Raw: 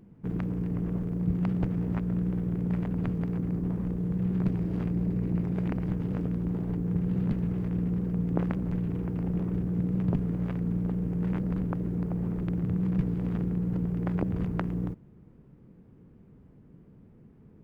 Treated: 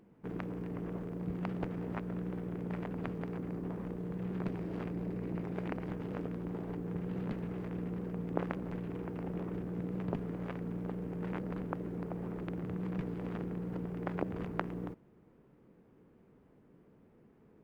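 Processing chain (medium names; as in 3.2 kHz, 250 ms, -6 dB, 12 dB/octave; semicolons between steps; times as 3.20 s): tone controls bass -14 dB, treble -4 dB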